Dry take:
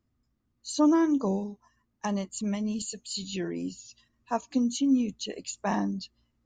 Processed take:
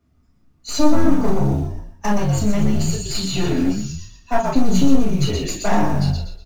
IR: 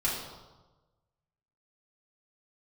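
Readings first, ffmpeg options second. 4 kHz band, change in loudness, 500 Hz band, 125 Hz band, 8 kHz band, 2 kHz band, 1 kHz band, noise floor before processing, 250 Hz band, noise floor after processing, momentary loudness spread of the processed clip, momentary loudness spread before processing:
+10.0 dB, +9.0 dB, +10.0 dB, +19.5 dB, +8.5 dB, +11.0 dB, +10.0 dB, −76 dBFS, +7.5 dB, −58 dBFS, 10 LU, 14 LU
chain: -filter_complex "[0:a]acontrast=59,highpass=frequency=50:width=0.5412,highpass=frequency=50:width=1.3066,asplit=6[link_01][link_02][link_03][link_04][link_05][link_06];[link_02]adelay=121,afreqshift=-57,volume=-5dB[link_07];[link_03]adelay=242,afreqshift=-114,volume=-13.6dB[link_08];[link_04]adelay=363,afreqshift=-171,volume=-22.3dB[link_09];[link_05]adelay=484,afreqshift=-228,volume=-30.9dB[link_10];[link_06]adelay=605,afreqshift=-285,volume=-39.5dB[link_11];[link_01][link_07][link_08][link_09][link_10][link_11]amix=inputs=6:normalize=0,acrusher=bits=6:mode=log:mix=0:aa=0.000001,bass=frequency=250:gain=1,treble=frequency=4000:gain=5,aeval=exprs='clip(val(0),-1,0.0596)':channel_layout=same,highshelf=frequency=3800:gain=-11,bandreject=frequency=60:width_type=h:width=6,bandreject=frequency=120:width_type=h:width=6,bandreject=frequency=180:width_type=h:width=6,bandreject=frequency=240:width_type=h:width=6,acompressor=threshold=-22dB:ratio=3[link_12];[1:a]atrim=start_sample=2205,atrim=end_sample=3087[link_13];[link_12][link_13]afir=irnorm=-1:irlink=0,volume=1.5dB"

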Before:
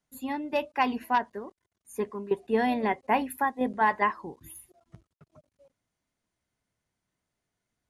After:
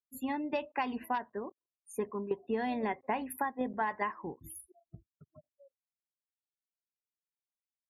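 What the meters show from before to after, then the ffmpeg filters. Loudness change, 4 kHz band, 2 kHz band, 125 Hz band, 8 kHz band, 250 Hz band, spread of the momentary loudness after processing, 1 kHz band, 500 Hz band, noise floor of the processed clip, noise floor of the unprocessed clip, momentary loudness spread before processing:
−7.5 dB, −8.5 dB, −8.0 dB, −4.5 dB, −2.0 dB, −5.5 dB, 12 LU, −8.0 dB, −6.0 dB, below −85 dBFS, −85 dBFS, 17 LU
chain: -af "afftdn=noise_reduction=34:noise_floor=-50,acompressor=threshold=-30dB:ratio=6"

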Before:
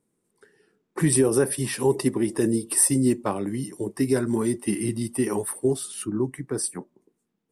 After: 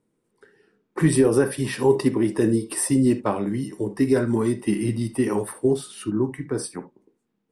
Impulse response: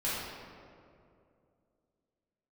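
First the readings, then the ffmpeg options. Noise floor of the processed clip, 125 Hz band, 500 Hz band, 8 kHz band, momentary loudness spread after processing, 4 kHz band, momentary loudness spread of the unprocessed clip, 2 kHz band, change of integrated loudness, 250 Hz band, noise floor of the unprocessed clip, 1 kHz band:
−74 dBFS, +2.5 dB, +2.5 dB, −6.0 dB, 10 LU, −0.5 dB, 10 LU, +2.5 dB, +1.5 dB, +3.0 dB, −77 dBFS, +3.0 dB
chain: -filter_complex "[0:a]highshelf=frequency=7200:gain=-11,asplit=2[link_01][link_02];[1:a]atrim=start_sample=2205,atrim=end_sample=3528,lowpass=6200[link_03];[link_02][link_03]afir=irnorm=-1:irlink=0,volume=-10.5dB[link_04];[link_01][link_04]amix=inputs=2:normalize=0,volume=1dB"

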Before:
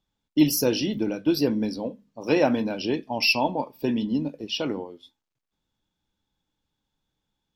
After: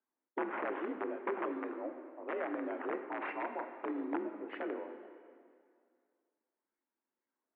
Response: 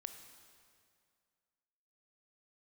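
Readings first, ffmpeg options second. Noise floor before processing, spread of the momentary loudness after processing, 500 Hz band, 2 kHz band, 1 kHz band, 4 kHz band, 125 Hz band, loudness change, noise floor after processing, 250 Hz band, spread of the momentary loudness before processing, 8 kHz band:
−83 dBFS, 8 LU, −12.0 dB, −12.0 dB, −8.0 dB, −33.0 dB, below −30 dB, −14.5 dB, below −85 dBFS, −16.5 dB, 10 LU, below −40 dB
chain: -filter_complex "[0:a]acrusher=samples=9:mix=1:aa=0.000001:lfo=1:lforange=5.4:lforate=0.82,alimiter=limit=-17dB:level=0:latency=1:release=221,aeval=exprs='(mod(8.41*val(0)+1,2)-1)/8.41':channel_layout=same[link_01];[1:a]atrim=start_sample=2205[link_02];[link_01][link_02]afir=irnorm=-1:irlink=0,highpass=frequency=200:width_type=q:width=0.5412,highpass=frequency=200:width_type=q:width=1.307,lowpass=frequency=2100:width_type=q:width=0.5176,lowpass=frequency=2100:width_type=q:width=0.7071,lowpass=frequency=2100:width_type=q:width=1.932,afreqshift=56,volume=-5dB"

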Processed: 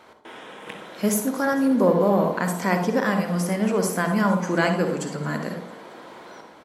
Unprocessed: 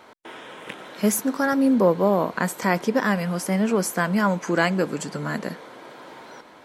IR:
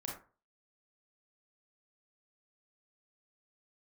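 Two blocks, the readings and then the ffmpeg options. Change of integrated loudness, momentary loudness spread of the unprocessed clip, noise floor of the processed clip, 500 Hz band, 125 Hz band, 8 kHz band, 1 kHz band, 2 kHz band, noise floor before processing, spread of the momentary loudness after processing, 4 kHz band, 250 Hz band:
0.0 dB, 21 LU, −48 dBFS, +0.5 dB, +1.5 dB, −1.0 dB, 0.0 dB, −1.0 dB, −48 dBFS, 21 LU, −1.0 dB, 0.0 dB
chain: -filter_complex "[0:a]asplit=6[link_01][link_02][link_03][link_04][link_05][link_06];[link_02]adelay=224,afreqshift=33,volume=-20.5dB[link_07];[link_03]adelay=448,afreqshift=66,volume=-24.9dB[link_08];[link_04]adelay=672,afreqshift=99,volume=-29.4dB[link_09];[link_05]adelay=896,afreqshift=132,volume=-33.8dB[link_10];[link_06]adelay=1120,afreqshift=165,volume=-38.2dB[link_11];[link_01][link_07][link_08][link_09][link_10][link_11]amix=inputs=6:normalize=0,asplit=2[link_12][link_13];[1:a]atrim=start_sample=2205,asetrate=27783,aresample=44100[link_14];[link_13][link_14]afir=irnorm=-1:irlink=0,volume=-1.5dB[link_15];[link_12][link_15]amix=inputs=2:normalize=0,volume=-6dB"

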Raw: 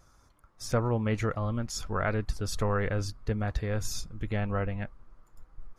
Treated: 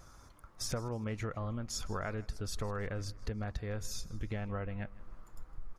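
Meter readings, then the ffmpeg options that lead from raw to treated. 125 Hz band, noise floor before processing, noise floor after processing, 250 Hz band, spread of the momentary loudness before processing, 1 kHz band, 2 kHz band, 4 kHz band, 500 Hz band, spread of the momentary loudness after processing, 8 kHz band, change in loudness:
−8.0 dB, −63 dBFS, −58 dBFS, −8.0 dB, 7 LU, −9.0 dB, −8.5 dB, −3.5 dB, −9.0 dB, 18 LU, −3.5 dB, −8.0 dB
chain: -af "acompressor=threshold=-40dB:ratio=6,aecho=1:1:158|316|474:0.0891|0.0374|0.0157,volume=5dB"

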